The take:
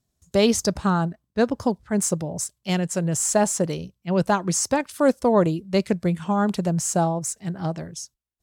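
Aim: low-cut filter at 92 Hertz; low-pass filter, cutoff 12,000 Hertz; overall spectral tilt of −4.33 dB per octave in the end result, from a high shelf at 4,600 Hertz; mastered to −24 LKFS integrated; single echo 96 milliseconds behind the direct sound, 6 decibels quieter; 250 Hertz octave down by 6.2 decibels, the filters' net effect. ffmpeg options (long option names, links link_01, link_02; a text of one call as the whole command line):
ffmpeg -i in.wav -af "highpass=92,lowpass=12000,equalizer=frequency=250:width_type=o:gain=-9,highshelf=frequency=4600:gain=-4,aecho=1:1:96:0.501,volume=1.5dB" out.wav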